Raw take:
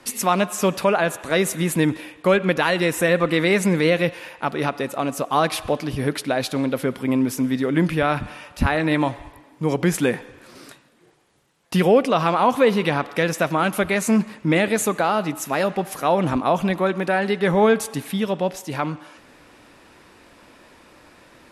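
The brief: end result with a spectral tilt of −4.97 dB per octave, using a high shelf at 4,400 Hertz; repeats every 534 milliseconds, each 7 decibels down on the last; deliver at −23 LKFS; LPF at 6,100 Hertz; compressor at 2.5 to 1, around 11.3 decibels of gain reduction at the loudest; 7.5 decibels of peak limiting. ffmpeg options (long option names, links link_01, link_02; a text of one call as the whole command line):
ffmpeg -i in.wav -af "lowpass=6100,highshelf=frequency=4400:gain=4,acompressor=threshold=-29dB:ratio=2.5,alimiter=limit=-20dB:level=0:latency=1,aecho=1:1:534|1068|1602|2136|2670:0.447|0.201|0.0905|0.0407|0.0183,volume=7.5dB" out.wav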